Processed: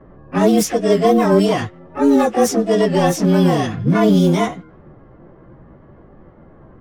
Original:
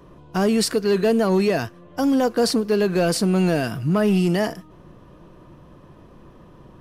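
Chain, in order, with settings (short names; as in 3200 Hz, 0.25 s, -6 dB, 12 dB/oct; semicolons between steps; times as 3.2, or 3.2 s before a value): inharmonic rescaling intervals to 108%; low-pass opened by the level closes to 990 Hz, open at -15.5 dBFS; harmoniser +7 st -6 dB; gain +5.5 dB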